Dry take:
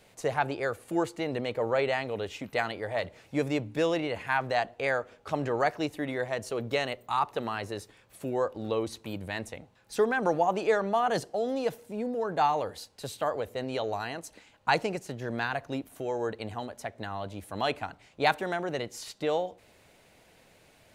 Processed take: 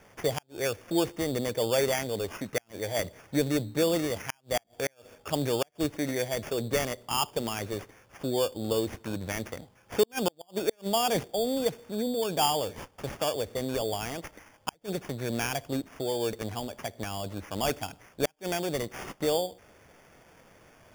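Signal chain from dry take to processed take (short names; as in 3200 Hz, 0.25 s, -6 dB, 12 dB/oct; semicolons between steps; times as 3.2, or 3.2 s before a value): sample-and-hold 11×; dynamic EQ 1200 Hz, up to -7 dB, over -43 dBFS, Q 0.92; flipped gate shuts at -17 dBFS, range -39 dB; gain +3 dB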